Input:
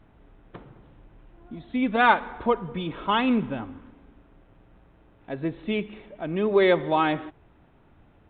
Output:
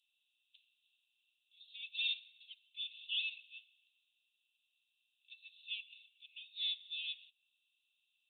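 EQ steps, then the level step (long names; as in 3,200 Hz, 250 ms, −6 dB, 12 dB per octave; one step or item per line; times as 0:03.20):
Chebyshev high-pass with heavy ripple 2,600 Hz, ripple 9 dB
+2.0 dB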